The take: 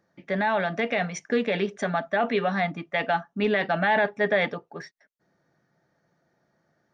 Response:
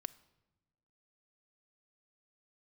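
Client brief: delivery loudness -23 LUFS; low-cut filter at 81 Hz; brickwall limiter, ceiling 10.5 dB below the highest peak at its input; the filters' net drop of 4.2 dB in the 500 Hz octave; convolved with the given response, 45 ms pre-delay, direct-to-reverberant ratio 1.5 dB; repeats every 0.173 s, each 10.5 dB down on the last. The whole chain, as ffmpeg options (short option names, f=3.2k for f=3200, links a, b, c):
-filter_complex "[0:a]highpass=81,equalizer=f=500:t=o:g=-5.5,alimiter=limit=-23.5dB:level=0:latency=1,aecho=1:1:173|346|519:0.299|0.0896|0.0269,asplit=2[a][b];[1:a]atrim=start_sample=2205,adelay=45[c];[b][c]afir=irnorm=-1:irlink=0,volume=2dB[d];[a][d]amix=inputs=2:normalize=0,volume=8dB"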